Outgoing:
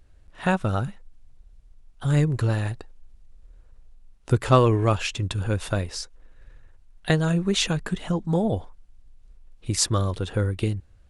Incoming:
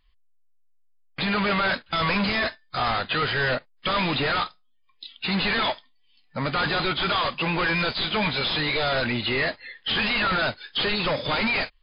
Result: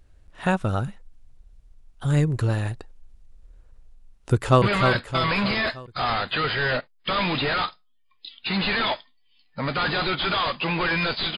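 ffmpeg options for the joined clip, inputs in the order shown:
-filter_complex "[0:a]apad=whole_dur=11.37,atrim=end=11.37,atrim=end=4.622[a];[1:a]atrim=start=1.398:end=8.15[b];[a][b]acrossfade=d=0.004:c1=hsin:c2=hsin,asplit=2[c][d];[d]afade=t=in:st=4.32:d=0.01,afade=t=out:st=4.62:d=0.01,aecho=0:1:310|620|930|1240|1550|1860:0.562341|0.281171|0.140585|0.0702927|0.0351463|0.0175732[e];[c][e]amix=inputs=2:normalize=0"

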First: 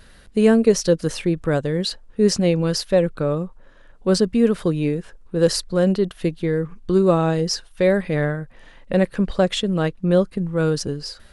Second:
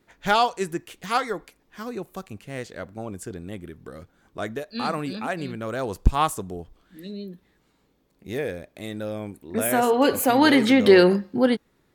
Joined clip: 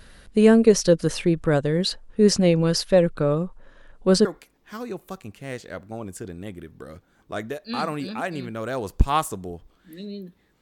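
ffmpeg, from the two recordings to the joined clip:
-filter_complex "[0:a]apad=whole_dur=10.61,atrim=end=10.61,atrim=end=4.252[a];[1:a]atrim=start=1.308:end=7.67[b];[a][b]acrossfade=d=0.004:c1=hsin:c2=hsin"

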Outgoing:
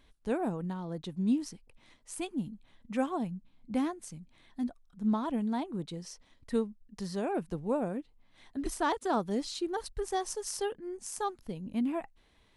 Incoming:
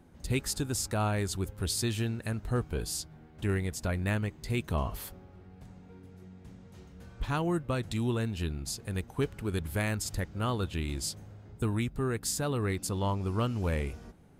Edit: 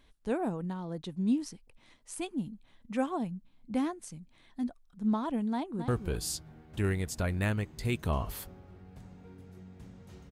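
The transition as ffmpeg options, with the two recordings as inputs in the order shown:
-filter_complex "[0:a]apad=whole_dur=10.31,atrim=end=10.31,atrim=end=5.882[a];[1:a]atrim=start=2.528:end=6.96[b];[a][b]acrossfade=d=0.004:c1=hsin:c2=hsin,asplit=2[c][d];[d]afade=t=in:st=5.51:d=0.01,afade=t=out:st=5.88:d=0.01,aecho=0:1:270|540:0.375837|0.0375837[e];[c][e]amix=inputs=2:normalize=0"

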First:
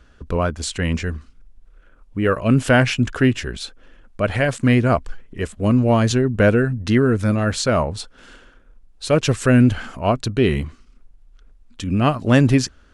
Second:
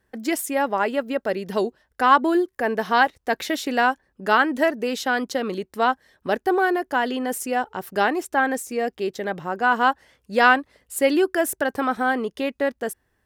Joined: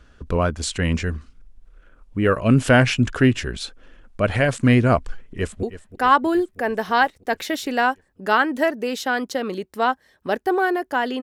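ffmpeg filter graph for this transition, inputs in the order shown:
-filter_complex "[0:a]apad=whole_dur=11.22,atrim=end=11.22,atrim=end=5.632[a];[1:a]atrim=start=1.628:end=7.22[b];[a][b]acrossfade=d=0.004:c1=hsin:c2=hsin,asplit=2[c][d];[d]afade=t=in:st=5.09:d=0.01,afade=t=out:st=5.63:d=0.01,aecho=0:1:320|640|960|1280|1600|1920|2240|2560|2880:0.188365|0.131855|0.0922988|0.0646092|0.0452264|0.0316585|0.0221609|0.0155127|0.0108589[e];[c][e]amix=inputs=2:normalize=0"

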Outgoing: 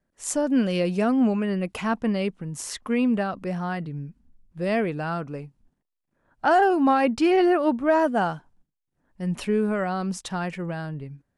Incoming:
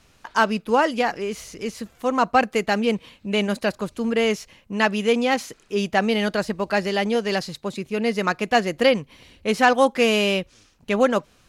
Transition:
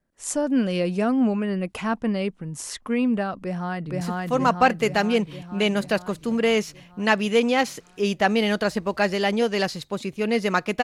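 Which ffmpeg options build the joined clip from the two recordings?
-filter_complex "[0:a]apad=whole_dur=10.83,atrim=end=10.83,atrim=end=4.012[a];[1:a]atrim=start=1.738:end=8.56[b];[a][b]acrossfade=d=0.004:c1=hsin:c2=hsin,asplit=2[c][d];[d]afade=t=in:st=3.39:d=0.01,afade=t=out:st=4.01:d=0.01,aecho=0:1:470|940|1410|1880|2350|2820|3290|3760|4230|4700|5170:1|0.65|0.4225|0.274625|0.178506|0.116029|0.0754189|0.0490223|0.0318645|0.0207119|0.0134627[e];[c][e]amix=inputs=2:normalize=0"

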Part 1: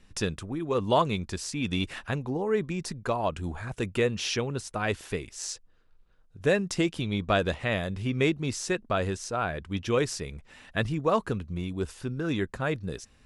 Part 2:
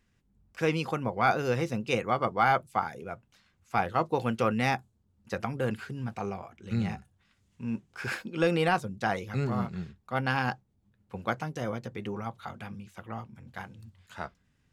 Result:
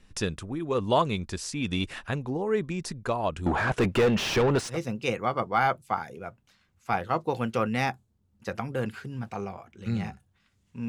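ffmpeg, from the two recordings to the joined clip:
-filter_complex "[0:a]asettb=1/sr,asplit=3[a][b][c];[a]atrim=end=3.464[d];[b]atrim=start=3.46:end=4.78,asetpts=PTS-STARTPTS,afade=t=in:d=0.004:c=qsin,afade=t=out:st=1.316:d=0.004:c=qsin,asplit=2[e][f];[f]highpass=f=720:p=1,volume=31dB,asoftclip=type=tanh:threshold=-13.5dB[g];[e][g]amix=inputs=2:normalize=0,lowpass=f=1.1k:p=1,volume=-6dB[h];[c]atrim=start=4.776[i];[d][h]acrossfade=d=0.004:c1=hsin:c2=qsin[j];[j][i]acrossfade=d=0.004:c1=qsin:c2=hsin,apad=whole_dur=10.88,atrim=end=10.88,atrim=end=4.78,asetpts=PTS-STARTPTS[k];[1:a]atrim=start=1.53:end=7.73,asetpts=PTS-STARTPTS[l];[k][l]acrossfade=d=0.1:c1=tri:c2=tri"

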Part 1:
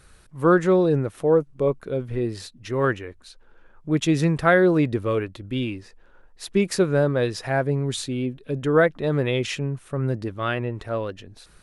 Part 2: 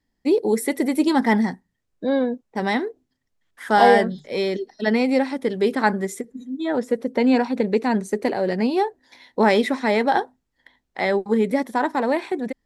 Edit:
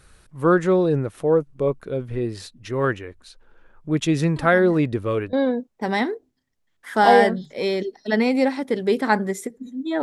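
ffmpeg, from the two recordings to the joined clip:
-filter_complex "[1:a]asplit=2[a][b];[0:a]apad=whole_dur=10.02,atrim=end=10.02,atrim=end=5.332[c];[b]atrim=start=2.068:end=6.76[d];[a]atrim=start=1.1:end=2.07,asetpts=PTS-STARTPTS,volume=-18dB,afade=t=in:d=0.004:c=hsin,afade=t=out:st=0.966:d=0.004:c=hsin,adelay=4360[e];[c][d]acrossfade=d=0.004:c1=hsin:c2=hsin[f];[f][e]amix=inputs=2:normalize=0"

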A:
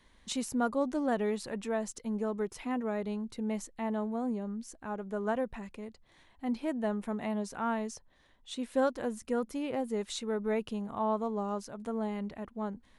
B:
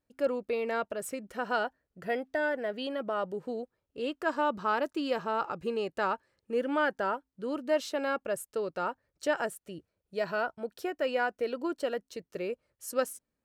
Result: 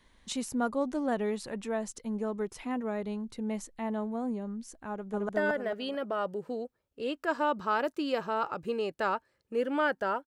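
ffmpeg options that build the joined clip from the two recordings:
-filter_complex "[0:a]apad=whole_dur=10.26,atrim=end=10.26,atrim=end=5.292[a];[1:a]atrim=start=2.268:end=7.24[b];[a][b]acrossfade=d=0.004:c1=hsin:c2=hsin,asplit=2[c][d];[d]afade=t=in:st=4.91:d=0.01,afade=t=out:st=5.29:d=0.01,aecho=0:1:220|440|660|880|1100:0.944061|0.330421|0.115647|0.0404766|0.0141668[e];[c][e]amix=inputs=2:normalize=0"

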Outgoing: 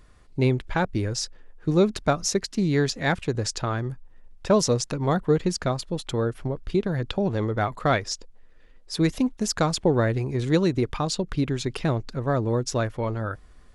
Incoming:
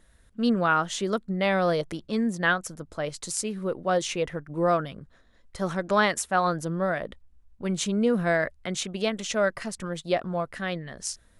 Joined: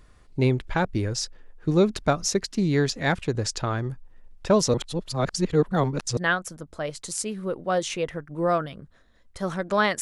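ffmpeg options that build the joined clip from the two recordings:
-filter_complex "[0:a]apad=whole_dur=10.01,atrim=end=10.01,asplit=2[a][b];[a]atrim=end=4.742[c];[b]atrim=start=4.738:end=6.172,asetpts=PTS-STARTPTS,areverse[d];[1:a]atrim=start=2.358:end=6.2[e];[c][d]acrossfade=d=0.004:c1=hsin:c2=hsin[f];[f][e]acrossfade=d=0.004:c1=hsin:c2=hsin"

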